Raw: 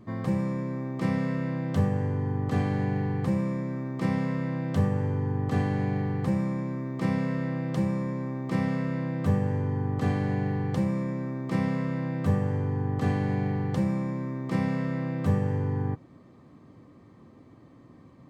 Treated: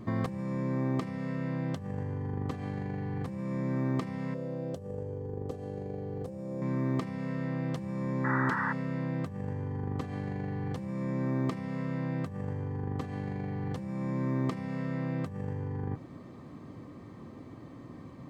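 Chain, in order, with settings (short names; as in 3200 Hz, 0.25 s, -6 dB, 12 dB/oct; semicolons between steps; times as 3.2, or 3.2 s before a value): negative-ratio compressor -34 dBFS, ratio -1; 4.34–6.62 ten-band EQ 125 Hz -5 dB, 250 Hz -6 dB, 500 Hz +9 dB, 1000 Hz -9 dB, 2000 Hz -12 dB, 4000 Hz -4 dB; 8.24–8.73 painted sound noise 840–2000 Hz -32 dBFS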